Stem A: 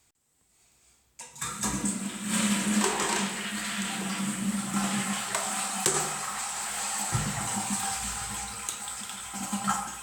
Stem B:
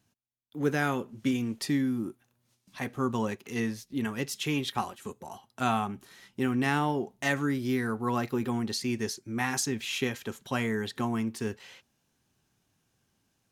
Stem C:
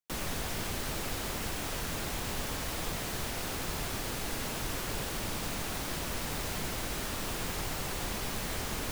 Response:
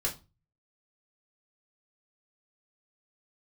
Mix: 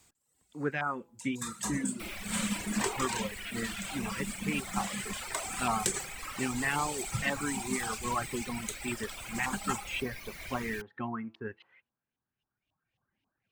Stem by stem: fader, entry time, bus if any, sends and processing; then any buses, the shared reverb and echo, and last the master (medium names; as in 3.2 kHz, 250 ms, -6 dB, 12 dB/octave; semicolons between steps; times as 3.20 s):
+2.5 dB, 0.00 s, no send, auto duck -7 dB, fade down 0.85 s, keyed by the second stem
-5.5 dB, 0.00 s, no send, de-hum 167.3 Hz, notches 9; LFO low-pass saw up 3.7 Hz 970–3000 Hz
-6.5 dB, 1.90 s, no send, peaking EQ 2.3 kHz +12.5 dB 0.51 oct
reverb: none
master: reverb removal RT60 1.8 s